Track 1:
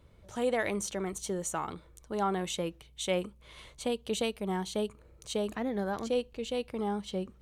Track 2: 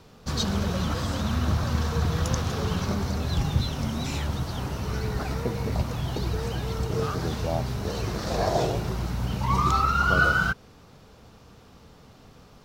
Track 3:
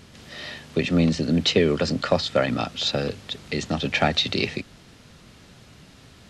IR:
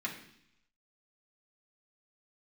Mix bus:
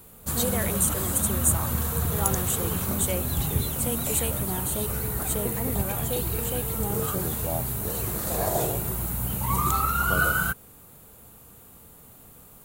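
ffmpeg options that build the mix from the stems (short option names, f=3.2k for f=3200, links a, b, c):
-filter_complex "[0:a]volume=-1.5dB[a];[1:a]volume=-2.5dB[b];[2:a]adelay=1950,volume=-20dB[c];[a][b][c]amix=inputs=3:normalize=0,equalizer=f=5.4k:t=o:w=0.77:g=-3,aexciter=amount=10.1:drive=8.5:freq=7.9k"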